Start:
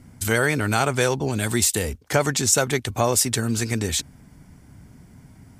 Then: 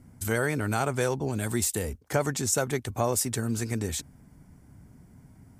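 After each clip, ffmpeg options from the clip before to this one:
ffmpeg -i in.wav -af "equalizer=frequency=3500:width_type=o:width=2:gain=-7,volume=-5dB" out.wav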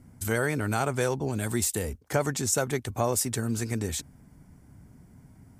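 ffmpeg -i in.wav -af anull out.wav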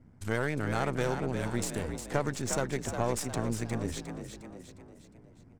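ffmpeg -i in.wav -filter_complex "[0:a]aeval=exprs='if(lt(val(0),0),0.447*val(0),val(0))':channel_layout=same,adynamicsmooth=sensitivity=6:basefreq=4000,asplit=2[link_01][link_02];[link_02]asplit=5[link_03][link_04][link_05][link_06][link_07];[link_03]adelay=357,afreqshift=49,volume=-7.5dB[link_08];[link_04]adelay=714,afreqshift=98,volume=-14.2dB[link_09];[link_05]adelay=1071,afreqshift=147,volume=-21dB[link_10];[link_06]adelay=1428,afreqshift=196,volume=-27.7dB[link_11];[link_07]adelay=1785,afreqshift=245,volume=-34.5dB[link_12];[link_08][link_09][link_10][link_11][link_12]amix=inputs=5:normalize=0[link_13];[link_01][link_13]amix=inputs=2:normalize=0,volume=-2.5dB" out.wav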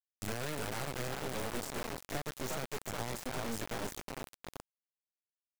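ffmpeg -i in.wav -filter_complex "[0:a]acrossover=split=82|260|1800|6500[link_01][link_02][link_03][link_04][link_05];[link_01]acompressor=threshold=-50dB:ratio=4[link_06];[link_02]acompressor=threshold=-47dB:ratio=4[link_07];[link_03]acompressor=threshold=-39dB:ratio=4[link_08];[link_04]acompressor=threshold=-55dB:ratio=4[link_09];[link_05]acompressor=threshold=-56dB:ratio=4[link_10];[link_06][link_07][link_08][link_09][link_10]amix=inputs=5:normalize=0,flanger=delay=7.7:depth=2.3:regen=48:speed=1.2:shape=sinusoidal,acrusher=bits=4:dc=4:mix=0:aa=0.000001,volume=5dB" out.wav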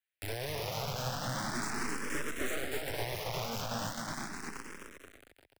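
ffmpeg -i in.wav -filter_complex "[0:a]acrossover=split=130|1700|2100[link_01][link_02][link_03][link_04];[link_03]aeval=exprs='0.00944*sin(PI/2*5.62*val(0)/0.00944)':channel_layout=same[link_05];[link_01][link_02][link_05][link_04]amix=inputs=4:normalize=0,aecho=1:1:260|481|668.8|828.5|964.2:0.631|0.398|0.251|0.158|0.1,asplit=2[link_06][link_07];[link_07]afreqshift=0.38[link_08];[link_06][link_08]amix=inputs=2:normalize=1,volume=2.5dB" out.wav

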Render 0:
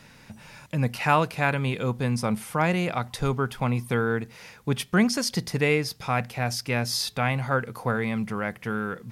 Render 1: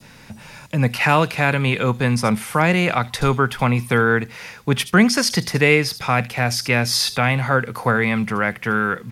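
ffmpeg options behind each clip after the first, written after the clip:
ffmpeg -i in.wav -filter_complex "[0:a]adynamicequalizer=threshold=0.0112:dfrequency=1800:dqfactor=0.78:tfrequency=1800:tqfactor=0.78:attack=5:release=100:ratio=0.375:range=3.5:mode=boostabove:tftype=bell,acrossover=split=120|640|3100[link_01][link_02][link_03][link_04];[link_03]alimiter=limit=-16dB:level=0:latency=1:release=238[link_05];[link_04]aecho=1:1:74:0.316[link_06];[link_01][link_02][link_05][link_06]amix=inputs=4:normalize=0,volume=6.5dB" out.wav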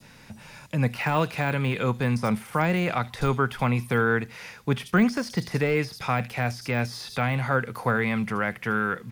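ffmpeg -i in.wav -af "deesser=0.7,volume=-5.5dB" out.wav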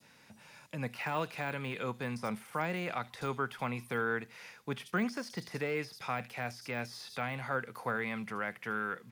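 ffmpeg -i in.wav -af "highpass=frequency=270:poles=1,volume=-9dB" out.wav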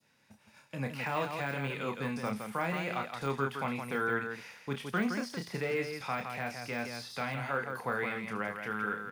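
ffmpeg -i in.wav -filter_complex "[0:a]agate=range=-10dB:threshold=-54dB:ratio=16:detection=peak,asplit=2[link_01][link_02];[link_02]aecho=0:1:29.15|166.2:0.501|0.501[link_03];[link_01][link_03]amix=inputs=2:normalize=0" out.wav

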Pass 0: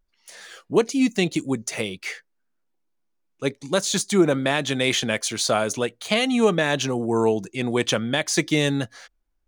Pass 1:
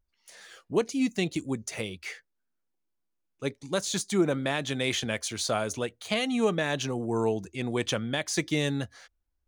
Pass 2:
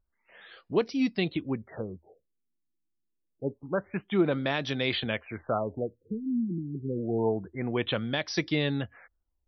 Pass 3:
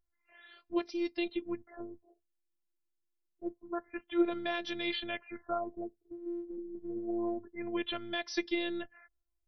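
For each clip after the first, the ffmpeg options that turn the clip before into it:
ffmpeg -i in.wav -af "equalizer=frequency=78:width_type=o:width=0.58:gain=14.5,volume=-7dB" out.wav
ffmpeg -i in.wav -af "afftfilt=real='re*lt(b*sr/1024,370*pow(5900/370,0.5+0.5*sin(2*PI*0.27*pts/sr)))':imag='im*lt(b*sr/1024,370*pow(5900/370,0.5+0.5*sin(2*PI*0.27*pts/sr)))':win_size=1024:overlap=0.75" out.wav
ffmpeg -i in.wav -af "afftfilt=real='hypot(re,im)*cos(PI*b)':imag='0':win_size=512:overlap=0.75,volume=-2.5dB" out.wav

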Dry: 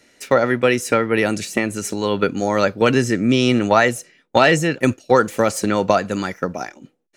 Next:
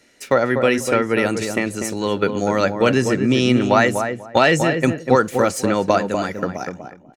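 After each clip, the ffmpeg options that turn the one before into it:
ffmpeg -i in.wav -filter_complex "[0:a]asplit=2[link_01][link_02];[link_02]adelay=245,lowpass=frequency=1200:poles=1,volume=-5.5dB,asplit=2[link_03][link_04];[link_04]adelay=245,lowpass=frequency=1200:poles=1,volume=0.2,asplit=2[link_05][link_06];[link_06]adelay=245,lowpass=frequency=1200:poles=1,volume=0.2[link_07];[link_01][link_03][link_05][link_07]amix=inputs=4:normalize=0,volume=-1dB" out.wav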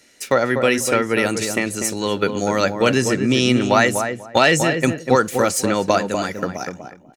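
ffmpeg -i in.wav -af "highshelf=frequency=3200:gain=8,volume=-1dB" out.wav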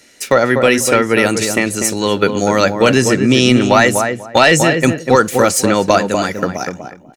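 ffmpeg -i in.wav -af "apsyclip=7.5dB,volume=-1.5dB" out.wav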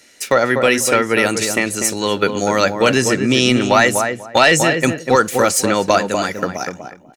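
ffmpeg -i in.wav -af "lowshelf=frequency=430:gain=-4.5,volume=-1dB" out.wav

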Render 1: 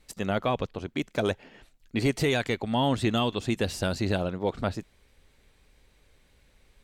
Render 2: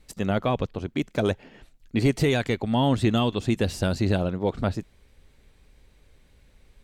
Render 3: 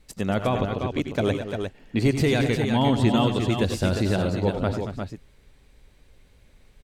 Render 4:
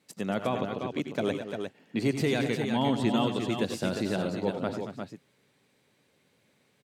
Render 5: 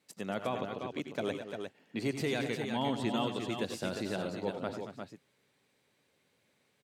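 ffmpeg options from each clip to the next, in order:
ffmpeg -i in.wav -af "lowshelf=frequency=380:gain=6" out.wav
ffmpeg -i in.wav -af "aecho=1:1:89|97|228|347|354:0.2|0.282|0.282|0.119|0.473" out.wav
ffmpeg -i in.wav -af "highpass=frequency=140:width=0.5412,highpass=frequency=140:width=1.3066,volume=-5dB" out.wav
ffmpeg -i in.wav -af "equalizer=frequency=170:width_type=o:width=2.2:gain=-4,volume=-4dB" out.wav

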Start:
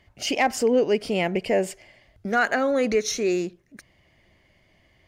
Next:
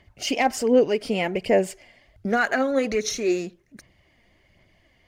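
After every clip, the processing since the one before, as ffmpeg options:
ffmpeg -i in.wav -af "aphaser=in_gain=1:out_gain=1:delay=4.3:decay=0.4:speed=1.3:type=sinusoidal,volume=-1dB" out.wav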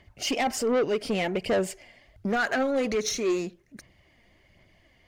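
ffmpeg -i in.wav -af "asoftclip=type=tanh:threshold=-20dB" out.wav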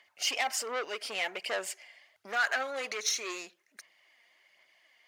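ffmpeg -i in.wav -af "highpass=1000" out.wav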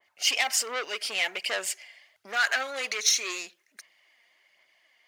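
ffmpeg -i in.wav -af "adynamicequalizer=threshold=0.00562:dfrequency=1600:dqfactor=0.7:tfrequency=1600:tqfactor=0.7:attack=5:release=100:ratio=0.375:range=4:mode=boostabove:tftype=highshelf" out.wav

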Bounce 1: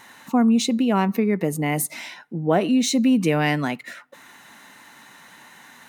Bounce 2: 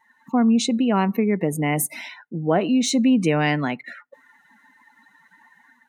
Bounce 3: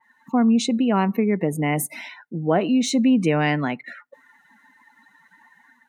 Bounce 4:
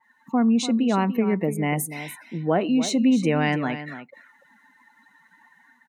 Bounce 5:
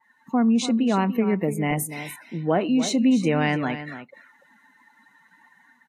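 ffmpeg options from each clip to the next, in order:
ffmpeg -i in.wav -af "afftdn=noise_reduction=22:noise_floor=-40,dynaudnorm=framelen=130:gausssize=5:maxgain=6dB,volume=-4.5dB" out.wav
ffmpeg -i in.wav -af "adynamicequalizer=threshold=0.01:dfrequency=3300:dqfactor=0.7:tfrequency=3300:tqfactor=0.7:attack=5:release=100:ratio=0.375:range=2.5:mode=cutabove:tftype=highshelf" out.wav
ffmpeg -i in.wav -af "aecho=1:1:292:0.251,volume=-2dB" out.wav
ffmpeg -i in.wav -ar 32000 -c:a aac -b:a 48k out.aac

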